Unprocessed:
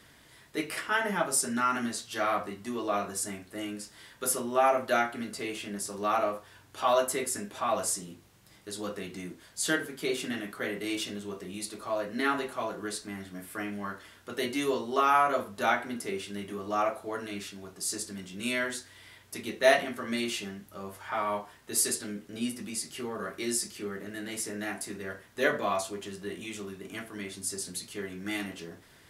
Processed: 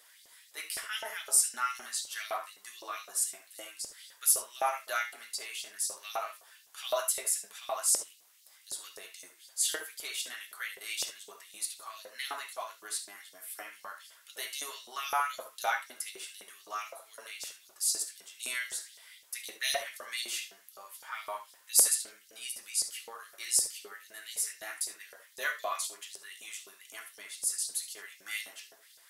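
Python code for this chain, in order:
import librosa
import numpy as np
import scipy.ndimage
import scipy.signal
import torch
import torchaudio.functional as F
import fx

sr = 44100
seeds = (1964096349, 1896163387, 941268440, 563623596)

y = scipy.signal.lfilter([1.0, -0.8], [1.0], x)
y = fx.filter_lfo_highpass(y, sr, shape='saw_up', hz=3.9, low_hz=520.0, high_hz=5500.0, q=2.4)
y = fx.rev_gated(y, sr, seeds[0], gate_ms=90, shape='rising', drr_db=9.5)
y = F.gain(torch.from_numpy(y), 2.5).numpy()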